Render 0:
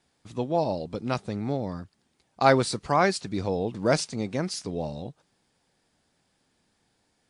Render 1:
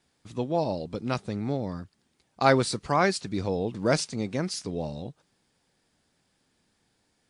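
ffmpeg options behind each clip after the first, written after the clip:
-af "equalizer=f=750:w=1.5:g=-2.5"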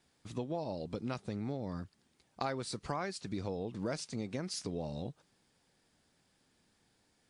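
-af "acompressor=threshold=0.0224:ratio=6,volume=0.841"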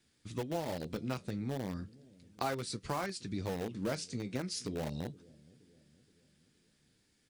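-filter_complex "[0:a]flanger=delay=9:depth=6.9:regen=-52:speed=0.35:shape=sinusoidal,acrossover=split=530|1200[s0][s1][s2];[s0]aecho=1:1:471|942|1413|1884:0.0891|0.0455|0.0232|0.0118[s3];[s1]acrusher=bits=7:mix=0:aa=0.000001[s4];[s3][s4][s2]amix=inputs=3:normalize=0,volume=1.78"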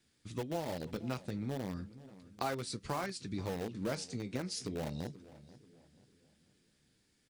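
-filter_complex "[0:a]asplit=2[s0][s1];[s1]adelay=486,lowpass=f=4900:p=1,volume=0.126,asplit=2[s2][s3];[s3]adelay=486,lowpass=f=4900:p=1,volume=0.37,asplit=2[s4][s5];[s5]adelay=486,lowpass=f=4900:p=1,volume=0.37[s6];[s0][s2][s4][s6]amix=inputs=4:normalize=0,volume=0.891"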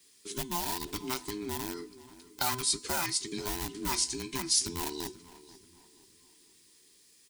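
-af "afftfilt=real='real(if(between(b,1,1008),(2*floor((b-1)/24)+1)*24-b,b),0)':imag='imag(if(between(b,1,1008),(2*floor((b-1)/24)+1)*24-b,b),0)*if(between(b,1,1008),-1,1)':win_size=2048:overlap=0.75,bandreject=f=252.5:t=h:w=4,bandreject=f=505:t=h:w=4,bandreject=f=757.5:t=h:w=4,bandreject=f=1010:t=h:w=4,bandreject=f=1262.5:t=h:w=4,bandreject=f=1515:t=h:w=4,bandreject=f=1767.5:t=h:w=4,bandreject=f=2020:t=h:w=4,bandreject=f=2272.5:t=h:w=4,bandreject=f=2525:t=h:w=4,bandreject=f=2777.5:t=h:w=4,bandreject=f=3030:t=h:w=4,bandreject=f=3282.5:t=h:w=4,bandreject=f=3535:t=h:w=4,bandreject=f=3787.5:t=h:w=4,bandreject=f=4040:t=h:w=4,bandreject=f=4292.5:t=h:w=4,bandreject=f=4545:t=h:w=4,bandreject=f=4797.5:t=h:w=4,bandreject=f=5050:t=h:w=4,bandreject=f=5302.5:t=h:w=4,bandreject=f=5555:t=h:w=4,bandreject=f=5807.5:t=h:w=4,bandreject=f=6060:t=h:w=4,bandreject=f=6312.5:t=h:w=4,bandreject=f=6565:t=h:w=4,bandreject=f=6817.5:t=h:w=4,bandreject=f=7070:t=h:w=4,bandreject=f=7322.5:t=h:w=4,bandreject=f=7575:t=h:w=4,bandreject=f=7827.5:t=h:w=4,bandreject=f=8080:t=h:w=4,bandreject=f=8332.5:t=h:w=4,bandreject=f=8585:t=h:w=4,bandreject=f=8837.5:t=h:w=4,bandreject=f=9090:t=h:w=4,bandreject=f=9342.5:t=h:w=4,bandreject=f=9595:t=h:w=4,bandreject=f=9847.5:t=h:w=4,bandreject=f=10100:t=h:w=4,crystalizer=i=6.5:c=0"

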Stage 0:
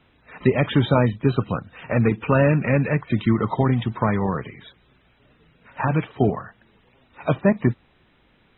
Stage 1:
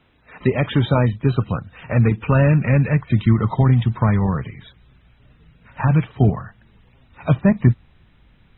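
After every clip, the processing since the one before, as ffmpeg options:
-af "asubboost=boost=4:cutoff=170"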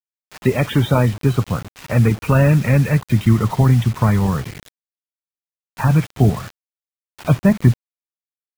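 -af "acrusher=bits=5:mix=0:aa=0.000001,volume=1.19"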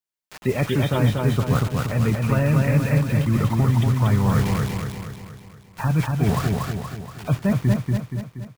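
-af "areverse,acompressor=threshold=0.0794:ratio=6,areverse,aecho=1:1:237|474|711|948|1185|1422|1659:0.708|0.368|0.191|0.0995|0.0518|0.0269|0.014,volume=1.58"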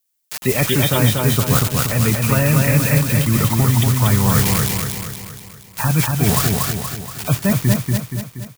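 -af "crystalizer=i=4.5:c=0,volume=1.41"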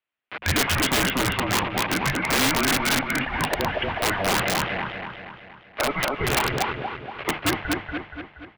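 -af "highpass=f=430:t=q:w=0.5412,highpass=f=430:t=q:w=1.307,lowpass=f=3100:t=q:w=0.5176,lowpass=f=3100:t=q:w=0.7071,lowpass=f=3100:t=q:w=1.932,afreqshift=-300,bandreject=f=50:t=h:w=6,bandreject=f=100:t=h:w=6,bandreject=f=150:t=h:w=6,bandreject=f=200:t=h:w=6,aeval=exprs='(mod(7.08*val(0)+1,2)-1)/7.08':c=same,volume=1.33"

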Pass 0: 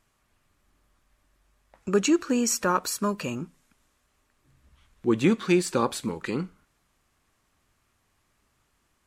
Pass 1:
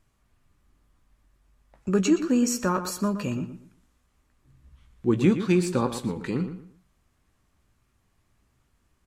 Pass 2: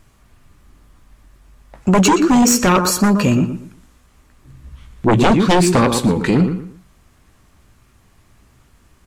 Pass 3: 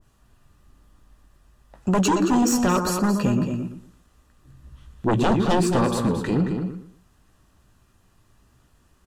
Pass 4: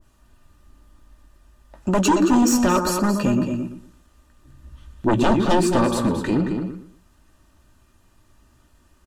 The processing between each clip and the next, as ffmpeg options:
-filter_complex "[0:a]lowshelf=f=280:g=10,asplit=2[s0][s1];[s1]adelay=16,volume=0.282[s2];[s0][s2]amix=inputs=2:normalize=0,asplit=2[s3][s4];[s4]adelay=119,lowpass=f=3200:p=1,volume=0.316,asplit=2[s5][s6];[s6]adelay=119,lowpass=f=3200:p=1,volume=0.28,asplit=2[s7][s8];[s8]adelay=119,lowpass=f=3200:p=1,volume=0.28[s9];[s5][s7][s9]amix=inputs=3:normalize=0[s10];[s3][s10]amix=inputs=2:normalize=0,volume=0.631"
-af "aeval=exprs='0.398*sin(PI/2*3.98*val(0)/0.398)':c=same"
-filter_complex "[0:a]bandreject=f=2200:w=5.8,asplit=2[s0][s1];[s1]adelay=221.6,volume=0.447,highshelf=f=4000:g=-4.99[s2];[s0][s2]amix=inputs=2:normalize=0,adynamicequalizer=threshold=0.0398:dfrequency=1500:dqfactor=0.7:tfrequency=1500:tqfactor=0.7:attack=5:release=100:ratio=0.375:range=2:mode=cutabove:tftype=highshelf,volume=0.422"
-af "aecho=1:1:3.3:0.4,volume=1.19"

